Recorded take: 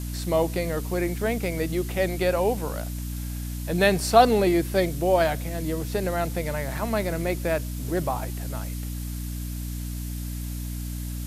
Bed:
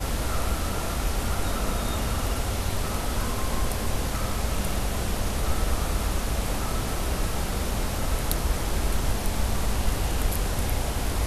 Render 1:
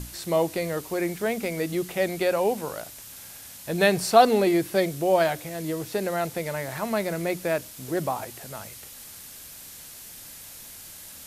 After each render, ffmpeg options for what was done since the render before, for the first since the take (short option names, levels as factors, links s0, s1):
-af "bandreject=f=60:t=h:w=6,bandreject=f=120:t=h:w=6,bandreject=f=180:t=h:w=6,bandreject=f=240:t=h:w=6,bandreject=f=300:t=h:w=6"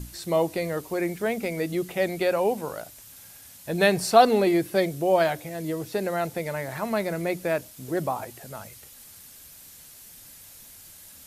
-af "afftdn=nr=6:nf=-44"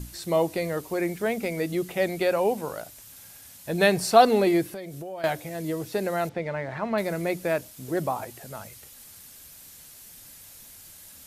-filter_complex "[0:a]asettb=1/sr,asplit=3[s0][s1][s2];[s0]atrim=end=4.674[s3];[s1]atrim=start=4.67:end=5.24,asetpts=PTS-STARTPTS,afade=t=in:d=0.004:c=qsin,afade=t=out:st=0.566:d=0.004:c=qsin,acompressor=threshold=0.0178:ratio=5:attack=3.2:release=140:knee=1:detection=peak[s4];[s2]atrim=start=5.236[s5];[s3][s4]acrossfade=d=0.004:c1=hsin:c2=qsin[s6];[s6][s5]acrossfade=d=0.004:c1=qsin:c2=hsin,asettb=1/sr,asplit=3[s7][s8][s9];[s7]atrim=end=6.294[s10];[s8]atrim=start=6.29:end=6.98,asetpts=PTS-STARTPTS,afade=t=in:d=0.004:c=qsin,afade=t=out:st=0.686:d=0.004:c=qsin,lowpass=3100[s11];[s9]atrim=start=6.976[s12];[s10][s11]acrossfade=d=0.004:c1=hsin:c2=qsin[s13];[s13][s12]acrossfade=d=0.004:c1=qsin:c2=hsin"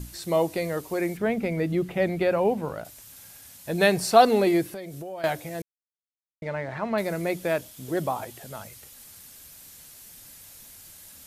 -filter_complex "[0:a]asettb=1/sr,asplit=3[s0][s1][s2];[s0]atrim=end=1.174[s3];[s1]atrim=start=1.17:end=2.85,asetpts=PTS-STARTPTS,afade=t=in:d=0.004:c=qsin,afade=t=out:st=1.676:d=0.004:c=qsin,bass=f=250:g=7,treble=f=4000:g=-11[s4];[s2]atrim=start=2.846[s5];[s3][s4]acrossfade=d=0.004:c1=hsin:c2=qsin[s6];[s6][s5]acrossfade=d=0.004:c1=qsin:c2=hsin,asettb=1/sr,asplit=3[s7][s8][s9];[s7]atrim=end=7.344[s10];[s8]atrim=start=7.34:end=8.63,asetpts=PTS-STARTPTS,afade=t=in:d=0.004:c=qsin,afade=t=out:st=1.286:d=0.004:c=qsin,equalizer=f=3300:w=5.8:g=6[s11];[s9]atrim=start=8.626[s12];[s10][s11]acrossfade=d=0.004:c1=hsin:c2=qsin[s13];[s13][s12]acrossfade=d=0.004:c1=qsin:c2=hsin,asplit=3[s14][s15][s16];[s14]atrim=end=5.62,asetpts=PTS-STARTPTS,afade=t=out:st=5.616:d=0.004:c=hsin[s17];[s15]atrim=start=5.62:end=6.42,asetpts=PTS-STARTPTS,volume=0[s18];[s16]atrim=start=6.42,asetpts=PTS-STARTPTS,afade=t=in:d=0.004:c=hsin[s19];[s17][s18][s19]concat=n=3:v=0:a=1"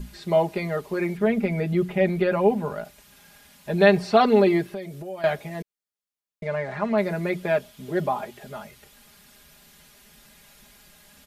-filter_complex "[0:a]acrossover=split=4100[s0][s1];[s1]acompressor=threshold=0.00126:ratio=4:attack=1:release=60[s2];[s0][s2]amix=inputs=2:normalize=0,aecho=1:1:4.9:0.85"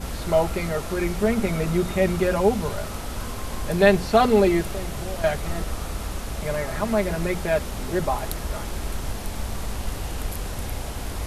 -filter_complex "[1:a]volume=0.631[s0];[0:a][s0]amix=inputs=2:normalize=0"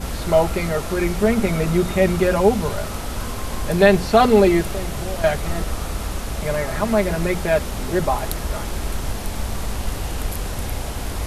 -af "volume=1.58,alimiter=limit=0.891:level=0:latency=1"